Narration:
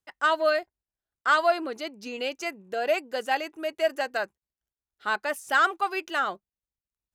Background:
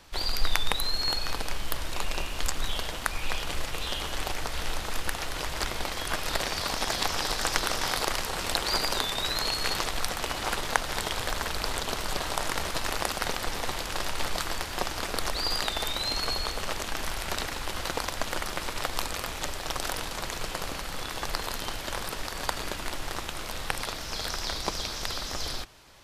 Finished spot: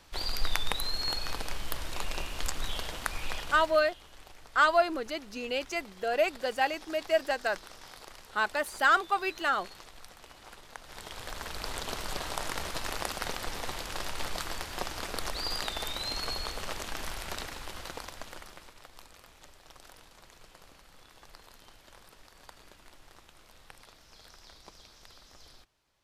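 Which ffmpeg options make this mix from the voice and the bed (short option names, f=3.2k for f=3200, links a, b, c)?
-filter_complex "[0:a]adelay=3300,volume=-1.5dB[a];[1:a]volume=11.5dB,afade=t=out:st=3.21:d=0.73:silence=0.149624,afade=t=in:st=10.76:d=1.12:silence=0.16788,afade=t=out:st=17.04:d=1.73:silence=0.149624[b];[a][b]amix=inputs=2:normalize=0"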